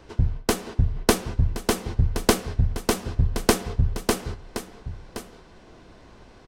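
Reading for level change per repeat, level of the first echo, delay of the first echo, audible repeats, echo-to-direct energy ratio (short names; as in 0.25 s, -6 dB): no steady repeat, -13.0 dB, 1.071 s, 1, -13.0 dB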